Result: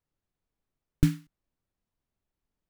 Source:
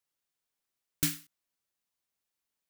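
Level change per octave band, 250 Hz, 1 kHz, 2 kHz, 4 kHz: +11.0, 0.0, -3.0, -7.5 dB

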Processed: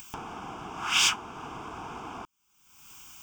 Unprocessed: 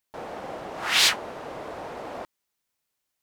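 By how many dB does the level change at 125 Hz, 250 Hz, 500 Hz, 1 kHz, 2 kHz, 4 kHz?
+1.0, -1.5, -10.5, -1.0, -3.5, -3.5 dB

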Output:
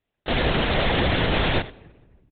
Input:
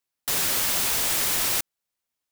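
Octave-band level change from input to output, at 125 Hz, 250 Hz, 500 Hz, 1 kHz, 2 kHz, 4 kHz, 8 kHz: +18.0 dB, +15.0 dB, +13.5 dB, +7.5 dB, +6.0 dB, +1.5 dB, under -40 dB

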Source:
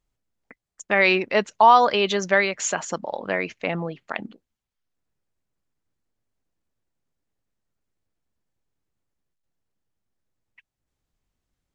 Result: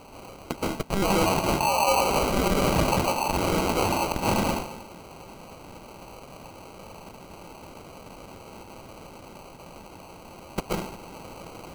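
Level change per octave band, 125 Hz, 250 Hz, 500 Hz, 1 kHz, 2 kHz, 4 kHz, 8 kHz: +8.0, +4.0, -2.0, -4.0, -7.5, -0.5, +1.0 dB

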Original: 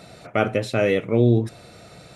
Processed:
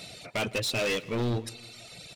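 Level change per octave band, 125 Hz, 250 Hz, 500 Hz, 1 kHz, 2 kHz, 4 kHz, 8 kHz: -11.5 dB, -11.5 dB, -11.0 dB, -8.5 dB, -3.5 dB, +4.5 dB, n/a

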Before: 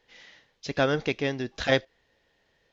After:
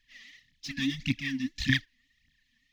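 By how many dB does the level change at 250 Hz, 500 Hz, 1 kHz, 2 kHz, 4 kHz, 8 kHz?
+0.5 dB, under -30 dB, under -25 dB, -1.5 dB, 0.0 dB, n/a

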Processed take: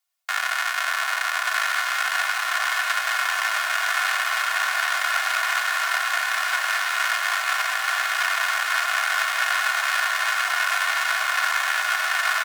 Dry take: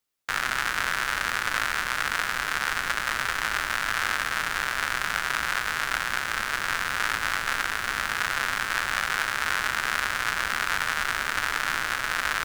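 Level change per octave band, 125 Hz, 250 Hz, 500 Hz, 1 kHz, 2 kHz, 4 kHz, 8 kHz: under -40 dB, under -30 dB, +2.0 dB, +4.5 dB, +4.0 dB, +4.5 dB, +4.0 dB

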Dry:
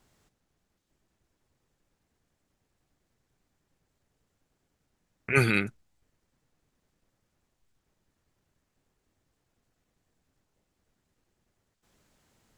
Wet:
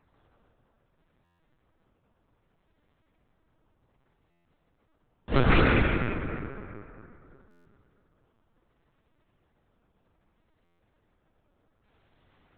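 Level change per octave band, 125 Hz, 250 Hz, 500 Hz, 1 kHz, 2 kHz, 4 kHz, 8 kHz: +4.5 dB, +5.5 dB, +4.5 dB, +8.5 dB, +0.5 dB, +5.0 dB, under -25 dB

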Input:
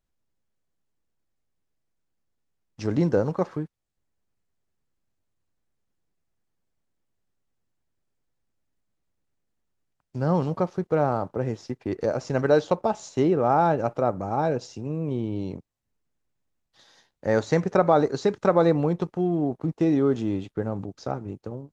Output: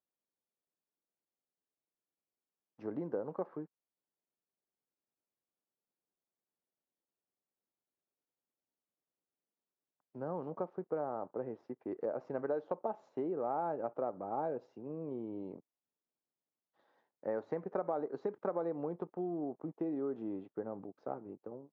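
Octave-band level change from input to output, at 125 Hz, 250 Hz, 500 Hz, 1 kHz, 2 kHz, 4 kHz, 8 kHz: -23.0 dB, -15.5 dB, -13.5 dB, -14.5 dB, -20.0 dB, under -30 dB, n/a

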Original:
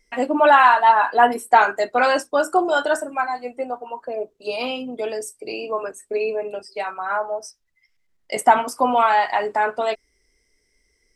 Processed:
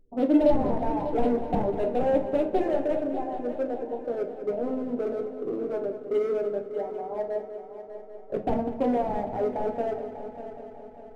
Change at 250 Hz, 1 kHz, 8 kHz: +2.5 dB, -15.5 dB, under -25 dB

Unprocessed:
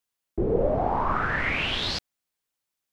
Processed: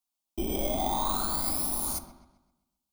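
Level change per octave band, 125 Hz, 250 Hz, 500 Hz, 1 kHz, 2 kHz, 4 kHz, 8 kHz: -9.0, -3.5, -9.0, -5.0, -20.5, -8.0, +16.0 dB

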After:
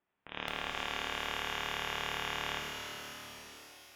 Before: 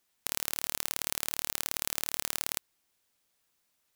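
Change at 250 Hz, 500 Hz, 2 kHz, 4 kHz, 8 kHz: +2.0, +4.5, +5.0, +1.0, -14.0 dB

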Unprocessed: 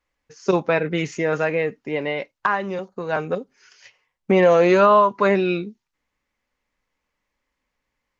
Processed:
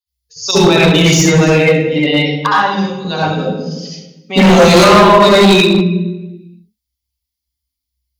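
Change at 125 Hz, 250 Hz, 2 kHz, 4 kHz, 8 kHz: +17.0 dB, +13.5 dB, +11.0 dB, +23.0 dB, n/a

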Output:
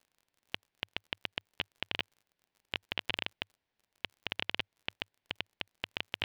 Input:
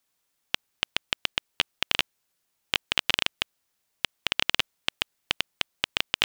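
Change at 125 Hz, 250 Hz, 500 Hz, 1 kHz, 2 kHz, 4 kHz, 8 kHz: -5.0 dB, -6.0 dB, -6.5 dB, -10.0 dB, -10.0 dB, -11.5 dB, under -25 dB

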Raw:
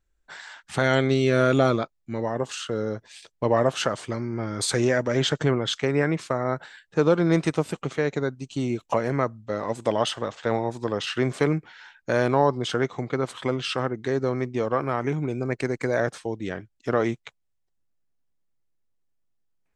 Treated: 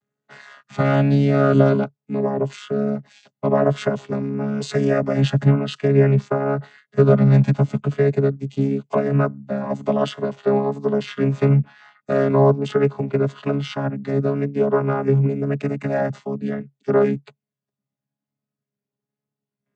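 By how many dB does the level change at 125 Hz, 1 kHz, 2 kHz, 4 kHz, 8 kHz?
+9.5 dB, +1.0 dB, -2.0 dB, -5.5 dB, n/a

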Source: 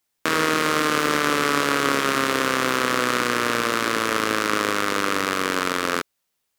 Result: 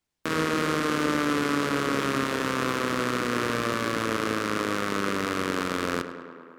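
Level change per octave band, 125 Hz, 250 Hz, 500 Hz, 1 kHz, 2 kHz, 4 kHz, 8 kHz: +1.0, -1.0, -4.0, -6.5, -7.0, -7.5, -8.5 dB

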